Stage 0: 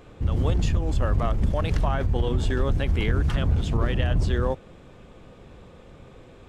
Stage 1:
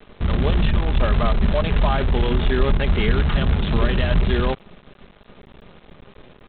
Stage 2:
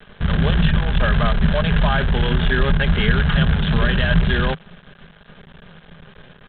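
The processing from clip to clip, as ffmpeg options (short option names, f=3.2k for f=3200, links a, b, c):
-af "aecho=1:1:4.9:0.49,aresample=8000,acrusher=bits=6:dc=4:mix=0:aa=0.000001,aresample=44100,volume=4dB"
-af "equalizer=f=160:t=o:w=0.33:g=10,equalizer=f=315:t=o:w=0.33:g=-10,equalizer=f=1.6k:t=o:w=0.33:g=11,equalizer=f=3.15k:t=o:w=0.33:g=6"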